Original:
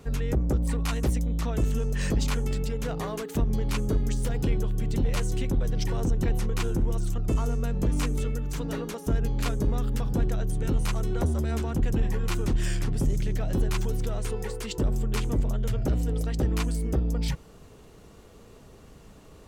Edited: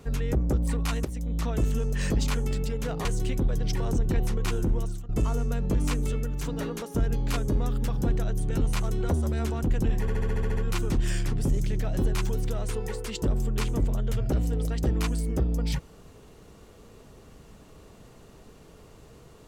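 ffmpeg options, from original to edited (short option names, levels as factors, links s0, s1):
-filter_complex "[0:a]asplit=12[s0][s1][s2][s3][s4][s5][s6][s7][s8][s9][s10][s11];[s0]atrim=end=1.05,asetpts=PTS-STARTPTS,afade=t=out:st=1.046:d=0.004:c=hsin:silence=0.177828[s12];[s1]atrim=start=1.05:end=3.052,asetpts=PTS-STARTPTS,afade=t=in:d=0.34:silence=0.177828[s13];[s2]atrim=start=5.168:end=7.21,asetpts=PTS-STARTPTS,afade=t=out:st=1.712:d=0.33:silence=0.11885[s14];[s3]atrim=start=7.21:end=12.202,asetpts=PTS-STARTPTS,afade=t=in:d=0.004:c=hsin:silence=0.11885[s15];[s4]atrim=start=12.128:end=12.202[s16];[s5]atrim=start=12.128:end=12.202[s17];[s6]atrim=start=12.128:end=12.202[s18];[s7]atrim=start=12.128:end=12.202[s19];[s8]atrim=start=12.128:end=12.202[s20];[s9]atrim=start=12.128:end=12.202[s21];[s10]atrim=start=12.128:end=12.202[s22];[s11]atrim=start=12.128[s23];[s12][s13]concat=n=2:v=0:a=1[s24];[s14][s15]concat=n=2:v=0:a=1[s25];[s24][s25]acrossfade=d=0.004:c1=hsin:c2=hsin[s26];[s26][s16]acrossfade=d=0.004:c1=hsin:c2=hsin[s27];[s27][s17]acrossfade=d=0.004:c1=hsin:c2=hsin[s28];[s28][s18]acrossfade=d=0.004:c1=hsin:c2=hsin[s29];[s29][s19]acrossfade=d=0.004:c1=hsin:c2=hsin[s30];[s30][s20]acrossfade=d=0.004:c1=hsin:c2=hsin[s31];[s31][s21]acrossfade=d=0.004:c1=hsin:c2=hsin[s32];[s32][s22]acrossfade=d=0.004:c1=hsin:c2=hsin[s33];[s33][s23]acrossfade=d=0.004:c1=hsin:c2=hsin"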